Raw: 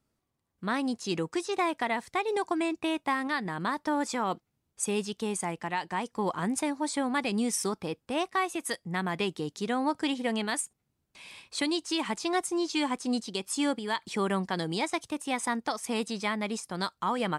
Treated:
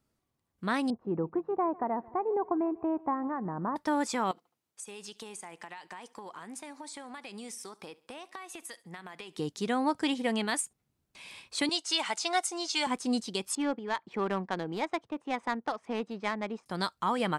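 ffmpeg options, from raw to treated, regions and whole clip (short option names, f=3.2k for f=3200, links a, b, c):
-filter_complex "[0:a]asettb=1/sr,asplit=3[a][b][c];[a]atrim=end=0.904[d];[b]atrim=start=0.9:end=3.76,asetpts=PTS-STARTPTS,afade=t=in:d=0.004:c=qsin,afade=t=out:st=2.856:d=0.004:c=qsin,lowpass=f=1.1k:w=0.5412,lowpass=f=1.1k:w=1.3066,aecho=1:1:148|296|444|592:0.075|0.042|0.0235|0.0132,atrim=end_sample=126126[e];[c]atrim=start=3.756[f];[d][e]acrossfade=d=0.004:c1=hsin:c2=qsin[g];[g][f]acrossfade=d=0.004:c1=qsin:c2=hsin,asettb=1/sr,asplit=3[h][i][j];[h]atrim=end=4.314[k];[i]atrim=start=4.31:end=9.37,asetpts=PTS-STARTPTS,afade=t=in:d=0.004:c=qsin,afade=t=out:st=5.056:d=0.004:c=qsin,highpass=f=650:p=1,acompressor=threshold=-39dB:ratio=16:attack=3.2:release=140:knee=1:detection=peak,aecho=1:1:71|142|213:0.0841|0.0362|0.0156,atrim=end_sample=223146[l];[j]atrim=start=9.366[m];[k][l]acrossfade=d=0.004:c1=hsin:c2=qsin[n];[n][m]acrossfade=d=0.004:c1=qsin:c2=hsin,asettb=1/sr,asplit=3[o][p][q];[o]atrim=end=11.694[r];[p]atrim=start=11.69:end=12.87,asetpts=PTS-STARTPTS,afade=t=in:d=0.004:c=qsin,afade=t=out:st=1.176:d=0.004:c=qsin,highpass=460,lowpass=6.2k,aemphasis=mode=production:type=50kf,aecho=1:1:1.4:0.35,atrim=end_sample=52038[s];[q]atrim=start=12.866[t];[r][s]acrossfade=d=0.004:c1=hsin:c2=qsin[u];[u][t]acrossfade=d=0.004:c1=qsin:c2=hsin,asettb=1/sr,asplit=3[v][w][x];[v]atrim=end=13.554[y];[w]atrim=start=13.55:end=16.66,asetpts=PTS-STARTPTS,afade=t=in:d=0.004:c=qsin,afade=t=out:st=3.106:d=0.004:c=qsin,highpass=f=280:p=1,adynamicsmooth=sensitivity=1.5:basefreq=1.3k[z];[x]atrim=start=16.656[aa];[y][z]acrossfade=d=0.004:c1=hsin:c2=qsin[ab];[ab][aa]acrossfade=d=0.004:c1=qsin:c2=hsin"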